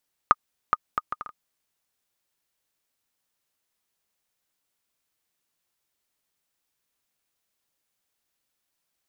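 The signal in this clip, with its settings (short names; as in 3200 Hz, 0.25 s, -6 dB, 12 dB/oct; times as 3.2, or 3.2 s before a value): bouncing ball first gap 0.42 s, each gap 0.59, 1230 Hz, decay 36 ms -3 dBFS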